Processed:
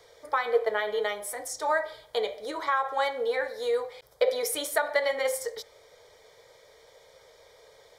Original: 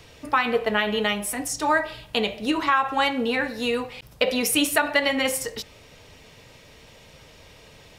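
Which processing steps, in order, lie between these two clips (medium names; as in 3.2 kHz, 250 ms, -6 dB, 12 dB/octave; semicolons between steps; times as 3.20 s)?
Butterworth band-stop 2.7 kHz, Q 3.6; resonant low shelf 340 Hz -11.5 dB, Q 3; trim -7 dB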